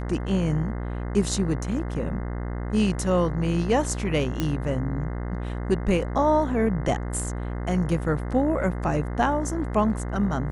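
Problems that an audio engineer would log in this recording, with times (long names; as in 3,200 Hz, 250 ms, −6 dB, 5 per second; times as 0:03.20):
mains buzz 60 Hz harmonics 35 −30 dBFS
0:04.40: click −11 dBFS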